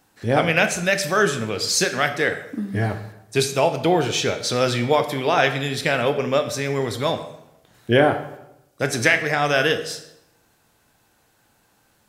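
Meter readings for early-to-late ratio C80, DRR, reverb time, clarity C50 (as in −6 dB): 13.0 dB, 7.5 dB, 0.90 s, 11.0 dB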